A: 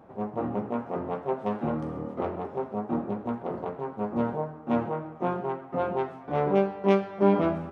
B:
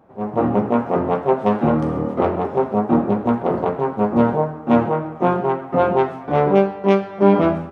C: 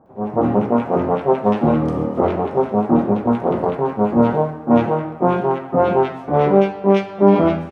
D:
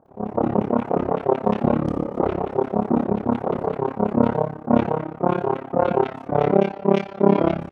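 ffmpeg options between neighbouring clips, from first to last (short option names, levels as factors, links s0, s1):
-af "dynaudnorm=f=100:g=5:m=5.31,volume=0.891"
-filter_complex "[0:a]acrossover=split=1500[s0][s1];[s1]adelay=60[s2];[s0][s2]amix=inputs=2:normalize=0,volume=1.19"
-af "tremolo=f=34:d=0.974"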